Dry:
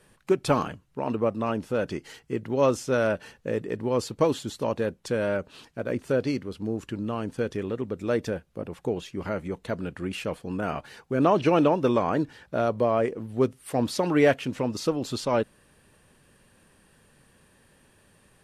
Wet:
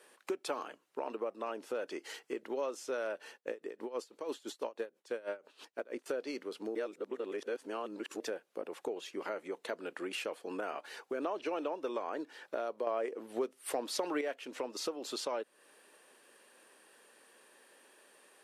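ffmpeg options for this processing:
-filter_complex "[0:a]asettb=1/sr,asplit=3[a][b][c];[a]atrim=end=3.344[d];[b]atrim=start=3.34:end=6.06,asetpts=PTS-STARTPTS,afade=t=in:d=0.004:c=qsin,afade=t=out:st=2.716:d=0.004:c=qsin,aeval=exprs='val(0)*pow(10,-21*(0.5-0.5*cos(2*PI*6.1*n/s))/20)':c=same[e];[c]atrim=start=6.056[f];[d][e]acrossfade=d=0.004:c1=hsin:c2=qsin[g];[g][f]acrossfade=d=0.004:c1=qsin:c2=hsin,asplit=5[h][i][j][k][l];[h]atrim=end=6.752[m];[i]atrim=start=6.748:end=8.202,asetpts=PTS-STARTPTS,areverse[n];[j]atrim=start=8.198:end=12.872[o];[k]atrim=start=12.868:end=14.212,asetpts=PTS-STARTPTS,volume=9.5dB[p];[l]atrim=start=14.208[q];[m][n]acrossfade=d=0.004:c1=hsin:c2=hsin[r];[r][o]acrossfade=d=0.004:c1=hsin:c2=hsin[s];[s][p]acrossfade=d=0.004:c1=hsin:c2=hsin[t];[t][q]acrossfade=d=0.004:c1=hsin:c2=hsin,highpass=f=340:w=0.5412,highpass=f=340:w=1.3066,acompressor=threshold=-36dB:ratio=4"

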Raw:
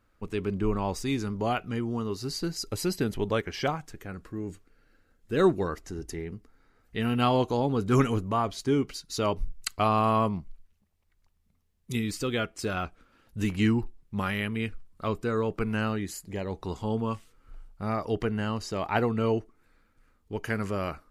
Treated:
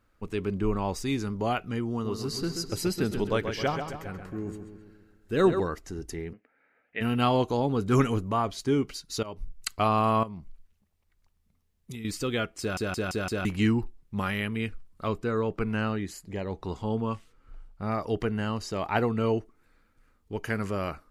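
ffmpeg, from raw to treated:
-filter_complex "[0:a]asettb=1/sr,asplit=3[a][b][c];[a]atrim=end=1.914[d];[b]atrim=start=1.91:end=5.6,asetpts=PTS-STARTPTS,afade=t=in:d=0.004:c=qsin,afade=t=out:st=3.686:d=0.004:c=qsin,asplit=2[e][f];[f]adelay=133,lowpass=f=4.4k:p=1,volume=-7dB,asplit=2[g][h];[h]adelay=133,lowpass=f=4.4k:p=1,volume=0.54,asplit=2[i][j];[j]adelay=133,lowpass=f=4.4k:p=1,volume=0.54,asplit=2[k][l];[l]adelay=133,lowpass=f=4.4k:p=1,volume=0.54,asplit=2[m][n];[n]adelay=133,lowpass=f=4.4k:p=1,volume=0.54,asplit=2[o][p];[p]adelay=133,lowpass=f=4.4k:p=1,volume=0.54,asplit=2[q][r];[r]adelay=133,lowpass=f=4.4k:p=1,volume=0.54[s];[e][g][i][k][m][o][q][s]amix=inputs=8:normalize=0,atrim=end_sample=162729[t];[c]atrim=start=5.596[u];[d][t]acrossfade=d=0.004:c1=hsin:c2=qsin[v];[v][u]acrossfade=d=0.004:c1=qsin:c2=hsin,asplit=3[w][x][y];[w]afade=t=out:st=6.32:d=0.02[z];[x]highpass=360,equalizer=f=380:t=q:w=4:g=-7,equalizer=f=580:t=q:w=4:g=6,equalizer=f=1.1k:t=q:w=4:g=-9,equalizer=f=1.7k:t=q:w=4:g=5,equalizer=f=2.4k:t=q:w=4:g=9,lowpass=f=2.6k:w=0.5412,lowpass=f=2.6k:w=1.3066,afade=t=in:st=6.32:d=0.02,afade=t=out:st=7:d=0.02[aa];[y]afade=t=in:st=7:d=0.02[ab];[z][aa][ab]amix=inputs=3:normalize=0,asettb=1/sr,asplit=3[ac][ad][ae];[ac]atrim=end=10.234[af];[ad]atrim=start=10.23:end=12.05,asetpts=PTS-STARTPTS,afade=t=in:d=0.004:c=qsin,afade=t=out:st=1.816:d=0.004:c=qsin,acompressor=threshold=-37dB:ratio=4:attack=3.2:release=140:knee=1:detection=peak[ag];[ae]atrim=start=12.046[ah];[af][ag]acrossfade=d=0.004:c1=hsin:c2=qsin[ai];[ai][ah]acrossfade=d=0.004:c1=qsin:c2=hsin,asettb=1/sr,asplit=3[aj][ak][al];[aj]atrim=end=15.154[am];[ak]atrim=start=15.15:end=17.92,asetpts=PTS-STARTPTS,afade=t=in:d=0.004:c=qsin,afade=t=out:st=2.766:d=0.004:c=qsin,highshelf=f=7.5k:g=-9[an];[al]atrim=start=17.916[ao];[am][an]acrossfade=d=0.004:c1=hsin:c2=qsin[ap];[ap][ao]acrossfade=d=0.004:c1=qsin:c2=hsin,asplit=7[aq][ar][as][at][au][av][aw];[aq]atrim=end=9.23,asetpts=PTS-STARTPTS,afade=t=out:st=9.226:d=0.004:c=hsin:silence=0.11885[ax];[ar]atrim=start=9.23:end=12.772,asetpts=PTS-STARTPTS,afade=t=in:d=0.46:silence=0.11885[ay];[as]atrim=start=12.598:end=12.772[az];[at]atrim=start=12.598:end=12.772[ba];[au]atrim=start=12.598:end=12.772[bb];[av]atrim=start=12.598:end=12.772[bc];[aw]atrim=start=13.448[bd];[ax][ay]concat=n=2:v=0:a=1[be];[be][az]acrossfade=d=0.004:c1=hsin:c2=hsin[bf];[bf][ba]acrossfade=d=0.004:c1=hsin:c2=hsin[bg];[bg][bb]acrossfade=d=0.004:c1=hsin:c2=hsin[bh];[bh][bc]acrossfade=d=0.004:c1=hsin:c2=hsin[bi];[bi][bd]acrossfade=d=0.004:c1=hsin:c2=hsin"

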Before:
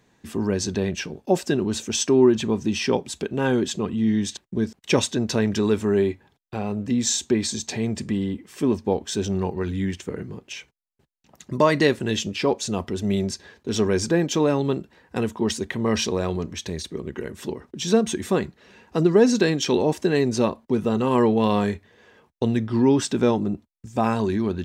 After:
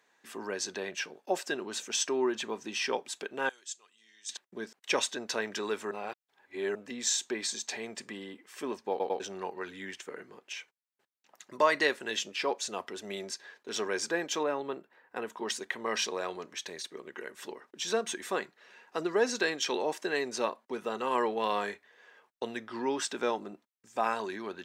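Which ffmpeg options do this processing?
-filter_complex "[0:a]asettb=1/sr,asplit=3[a][b][c];[a]atrim=end=3.494[d];[b]atrim=start=3.49:end=4.29,asetpts=PTS-STARTPTS,afade=t=in:d=0.004:c=qsin,afade=t=out:st=0.796:d=0.004:c=qsin,bandpass=f=7.3k:t=q:w=1.9[e];[c]atrim=start=4.286[f];[d][e]acrossfade=d=0.004:c1=hsin:c2=qsin[g];[g][f]acrossfade=d=0.004:c1=qsin:c2=hsin,asettb=1/sr,asplit=3[h][i][j];[h]atrim=end=14.434[k];[i]atrim=start=14.43:end=15.3,asetpts=PTS-STARTPTS,afade=t=in:d=0.004:c=qsin,afade=t=out:st=0.866:d=0.004:c=qsin,equalizer=f=6.4k:w=0.52:g=-11.5[l];[j]atrim=start=15.296[m];[k][l]acrossfade=d=0.004:c1=hsin:c2=qsin[n];[n][m]acrossfade=d=0.004:c1=qsin:c2=hsin,asplit=6[o][p][q][r][s][t];[o]atrim=end=5.912[u];[p]atrim=start=5.908:end=6.752,asetpts=PTS-STARTPTS,areverse[v];[q]atrim=start=6.748:end=9.002[w];[r]atrim=start=8.898:end=9.002[x];[s]atrim=start=8.898:end=9.002[y];[t]atrim=start=9.198[z];[u][v]acrossfade=d=0.004:c1=hsin:c2=hsin[aa];[aa][w]acrossfade=d=0.004:c1=hsin:c2=hsin[ab];[ab][x]acrossfade=d=0.004:c1=hsin:c2=hsin[ac];[ac][y]acrossfade=d=0.004:c1=hsin:c2=hsin[ad];[ad][z]acrossfade=d=0.004:c1=hsin:c2=hsin,highpass=530,equalizer=f=1.6k:t=o:w=1.1:g=4.5,volume=-6dB"

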